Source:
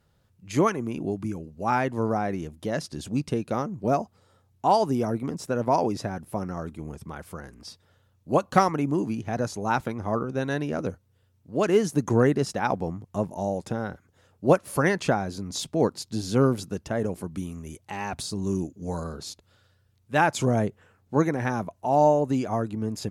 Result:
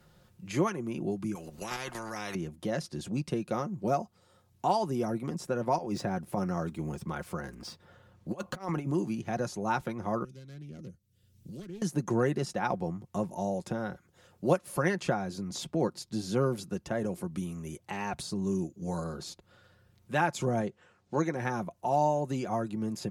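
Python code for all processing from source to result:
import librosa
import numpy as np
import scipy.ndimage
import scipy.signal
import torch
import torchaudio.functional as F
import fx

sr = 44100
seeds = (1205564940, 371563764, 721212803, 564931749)

y = fx.chain(x, sr, fx.level_steps(step_db=11),
    fx.spectral_comp(ratio=4.0), at=(1.35, 2.35))
y = fx.chain(y, sr, fx.median_filter(points=3),
    fx.over_compress(threshold_db=-28.0, ratio=-0.5), at=(5.78, 8.91))
y = fx.chain(y, sr, fx.self_delay(depth_ms=0.26),
    fx.tone_stack(knobs='10-0-1'),
    fx.band_squash(depth_pct=100), at=(10.24, 11.82))
y = fx.chain(y, sr, fx.lowpass(hz=5500.0, slope=12),
    fx.bass_treble(bass_db=-4, treble_db=7), at=(20.61, 21.36))
y = y + 0.45 * np.pad(y, (int(5.6 * sr / 1000.0), 0))[:len(y)]
y = fx.band_squash(y, sr, depth_pct=40)
y = y * librosa.db_to_amplitude(-5.5)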